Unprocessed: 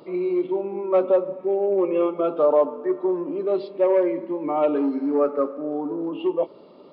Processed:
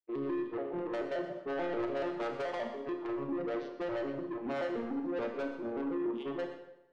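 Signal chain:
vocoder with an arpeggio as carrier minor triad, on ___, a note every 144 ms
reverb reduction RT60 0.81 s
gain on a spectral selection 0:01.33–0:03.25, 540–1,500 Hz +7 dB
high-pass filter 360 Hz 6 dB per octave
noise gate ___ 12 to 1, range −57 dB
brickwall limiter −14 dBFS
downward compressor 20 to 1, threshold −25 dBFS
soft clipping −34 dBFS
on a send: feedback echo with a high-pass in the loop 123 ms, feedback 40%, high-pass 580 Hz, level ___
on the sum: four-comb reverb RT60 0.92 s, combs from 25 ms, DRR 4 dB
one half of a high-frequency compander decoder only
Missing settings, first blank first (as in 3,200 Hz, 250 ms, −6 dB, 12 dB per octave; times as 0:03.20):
A#2, −44 dBFS, −13 dB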